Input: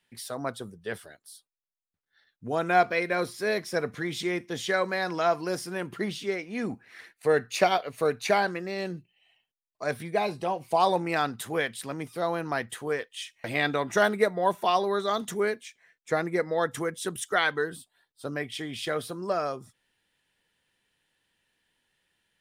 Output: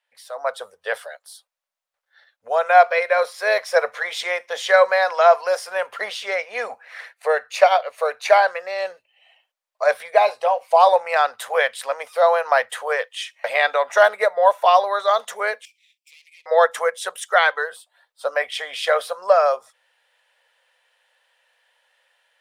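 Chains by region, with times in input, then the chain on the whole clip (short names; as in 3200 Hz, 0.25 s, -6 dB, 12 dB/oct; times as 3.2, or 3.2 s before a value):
15.65–16.46 minimum comb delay 0.39 ms + elliptic high-pass 2400 Hz + compressor 4:1, threshold -58 dBFS
whole clip: elliptic high-pass 530 Hz, stop band 40 dB; tilt -2.5 dB/oct; AGC gain up to 14 dB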